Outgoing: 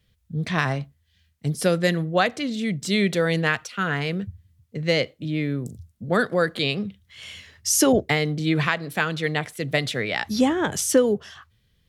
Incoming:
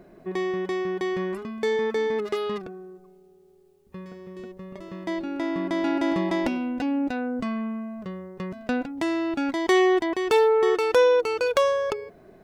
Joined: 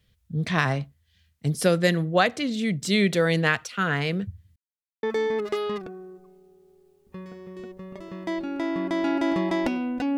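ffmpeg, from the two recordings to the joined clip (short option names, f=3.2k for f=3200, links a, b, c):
-filter_complex "[0:a]apad=whole_dur=10.17,atrim=end=10.17,asplit=2[a][b];[a]atrim=end=4.56,asetpts=PTS-STARTPTS,afade=t=out:st=4.556:d=0.004:c=hsin[c];[b]atrim=start=4.56:end=5.03,asetpts=PTS-STARTPTS,volume=0[d];[1:a]atrim=start=1.83:end=6.97,asetpts=PTS-STARTPTS,afade=t=in:d=0.004:c=hsin[e];[c][d][e]concat=n=3:v=0:a=1"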